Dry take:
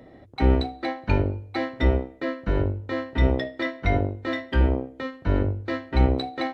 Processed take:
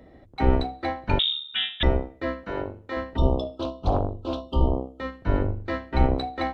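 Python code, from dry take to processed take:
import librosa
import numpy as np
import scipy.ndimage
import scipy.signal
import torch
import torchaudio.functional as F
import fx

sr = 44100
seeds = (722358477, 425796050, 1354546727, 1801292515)

y = fx.octave_divider(x, sr, octaves=2, level_db=-2.0)
y = fx.highpass(y, sr, hz=390.0, slope=6, at=(2.43, 2.97))
y = fx.spec_erase(y, sr, start_s=3.16, length_s=1.84, low_hz=1300.0, high_hz=2700.0)
y = fx.dynamic_eq(y, sr, hz=940.0, q=0.86, threshold_db=-39.0, ratio=4.0, max_db=6)
y = fx.freq_invert(y, sr, carrier_hz=3700, at=(1.19, 1.83))
y = fx.doppler_dist(y, sr, depth_ms=0.74, at=(3.59, 4.44))
y = y * 10.0 ** (-3.0 / 20.0)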